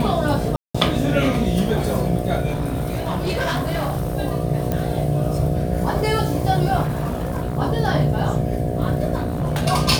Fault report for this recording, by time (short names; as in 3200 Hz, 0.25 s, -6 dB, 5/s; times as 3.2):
buzz 60 Hz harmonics 12 -25 dBFS
0.56–0.74 gap 0.185 s
2.48–4.15 clipped -18.5 dBFS
4.72 pop -9 dBFS
6.83–7.58 clipped -19 dBFS
9.15–9.64 clipped -18 dBFS